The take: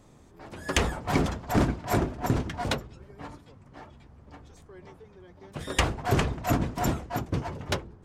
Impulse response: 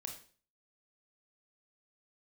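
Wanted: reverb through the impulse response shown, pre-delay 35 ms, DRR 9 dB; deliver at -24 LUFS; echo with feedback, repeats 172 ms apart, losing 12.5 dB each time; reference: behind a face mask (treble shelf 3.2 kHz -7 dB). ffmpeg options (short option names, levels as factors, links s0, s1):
-filter_complex "[0:a]aecho=1:1:172|344|516:0.237|0.0569|0.0137,asplit=2[s0][s1];[1:a]atrim=start_sample=2205,adelay=35[s2];[s1][s2]afir=irnorm=-1:irlink=0,volume=0.501[s3];[s0][s3]amix=inputs=2:normalize=0,highshelf=f=3200:g=-7,volume=1.68"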